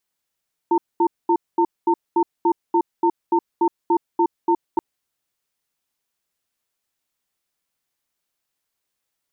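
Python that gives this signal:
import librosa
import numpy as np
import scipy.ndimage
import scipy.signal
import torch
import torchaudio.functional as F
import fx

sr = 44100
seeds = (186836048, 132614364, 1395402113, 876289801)

y = fx.cadence(sr, length_s=4.08, low_hz=342.0, high_hz=908.0, on_s=0.07, off_s=0.22, level_db=-16.5)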